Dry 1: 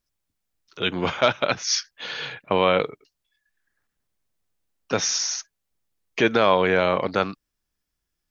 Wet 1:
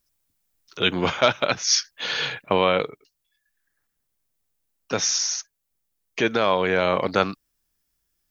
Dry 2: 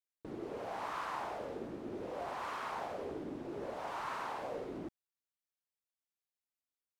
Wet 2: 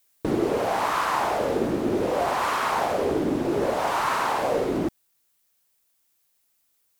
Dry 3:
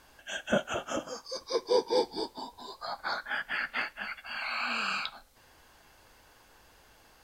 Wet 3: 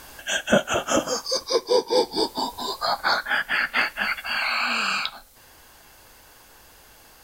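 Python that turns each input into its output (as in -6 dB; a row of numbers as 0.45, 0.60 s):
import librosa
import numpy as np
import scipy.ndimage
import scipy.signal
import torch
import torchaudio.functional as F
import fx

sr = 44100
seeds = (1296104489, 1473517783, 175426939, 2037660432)

y = fx.high_shelf(x, sr, hz=7500.0, db=10.0)
y = fx.rider(y, sr, range_db=5, speed_s=0.5)
y = y * 10.0 ** (-26 / 20.0) / np.sqrt(np.mean(np.square(y)))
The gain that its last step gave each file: +0.5, +17.0, +9.5 dB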